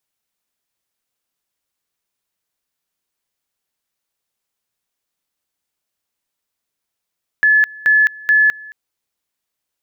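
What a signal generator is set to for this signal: two-level tone 1.72 kHz -8.5 dBFS, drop 23.5 dB, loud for 0.21 s, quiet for 0.22 s, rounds 3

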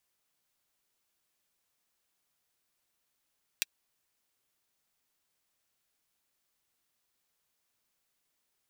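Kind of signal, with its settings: closed hi-hat, high-pass 2.4 kHz, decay 0.03 s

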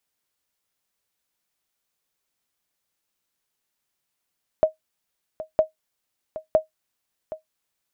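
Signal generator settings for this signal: sonar ping 629 Hz, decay 0.13 s, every 0.96 s, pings 3, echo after 0.77 s, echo -15.5 dB -8 dBFS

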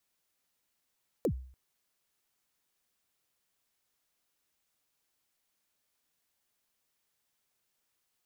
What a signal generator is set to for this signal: kick drum length 0.29 s, from 570 Hz, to 64 Hz, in 81 ms, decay 0.52 s, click on, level -23 dB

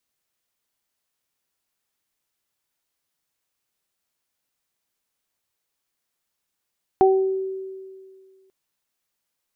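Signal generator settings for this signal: additive tone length 1.49 s, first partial 382 Hz, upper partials -1 dB, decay 2.02 s, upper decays 0.44 s, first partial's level -12 dB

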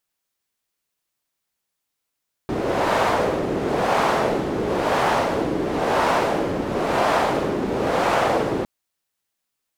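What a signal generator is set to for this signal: wind-like swept noise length 6.16 s, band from 340 Hz, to 810 Hz, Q 1.3, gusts 6, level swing 5 dB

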